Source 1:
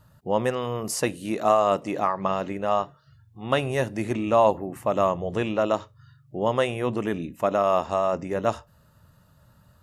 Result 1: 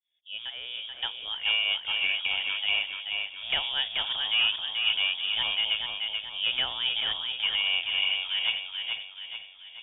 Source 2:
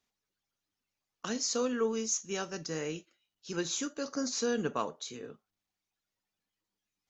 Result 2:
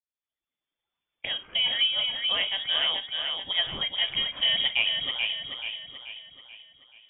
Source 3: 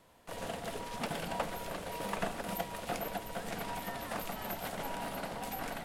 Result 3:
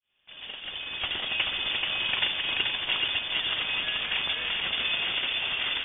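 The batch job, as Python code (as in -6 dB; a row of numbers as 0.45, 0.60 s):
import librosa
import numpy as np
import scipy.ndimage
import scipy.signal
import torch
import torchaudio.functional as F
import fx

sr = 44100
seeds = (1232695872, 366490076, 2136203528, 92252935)

p1 = fx.fade_in_head(x, sr, length_s=1.66)
p2 = fx.dynamic_eq(p1, sr, hz=220.0, q=1.0, threshold_db=-38.0, ratio=4.0, max_db=-4)
p3 = fx.rider(p2, sr, range_db=3, speed_s=0.5)
p4 = p2 + (p3 * 10.0 ** (0.0 / 20.0))
p5 = 10.0 ** (-8.0 / 20.0) * np.tanh(p4 / 10.0 ** (-8.0 / 20.0))
p6 = p5 + fx.echo_feedback(p5, sr, ms=433, feedback_pct=47, wet_db=-4.5, dry=0)
p7 = fx.freq_invert(p6, sr, carrier_hz=3500)
y = p7 * 10.0 ** (-30 / 20.0) / np.sqrt(np.mean(np.square(p7)))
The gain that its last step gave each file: -9.5, +2.0, +2.5 dB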